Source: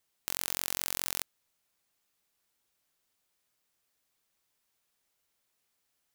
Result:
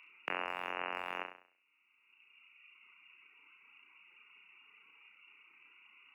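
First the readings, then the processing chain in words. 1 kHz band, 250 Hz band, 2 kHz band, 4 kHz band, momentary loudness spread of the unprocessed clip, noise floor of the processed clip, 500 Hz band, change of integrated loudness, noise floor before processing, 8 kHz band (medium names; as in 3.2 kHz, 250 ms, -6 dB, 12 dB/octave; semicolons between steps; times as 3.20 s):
+6.5 dB, -1.5 dB, +3.0 dB, -10.0 dB, 5 LU, -75 dBFS, +4.0 dB, -7.0 dB, -79 dBFS, under -35 dB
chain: local Wiener filter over 41 samples; spectral gate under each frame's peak -25 dB strong; frequency inversion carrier 2.8 kHz; in parallel at -6 dB: Schmitt trigger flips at -49 dBFS; on the sum: compressor with a negative ratio -50 dBFS, ratio -0.5; reverb removal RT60 2 s; high-pass 330 Hz 12 dB/octave; on a send: flutter echo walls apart 5.7 m, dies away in 0.43 s; on the sum: three bands compressed up and down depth 40%; trim +17.5 dB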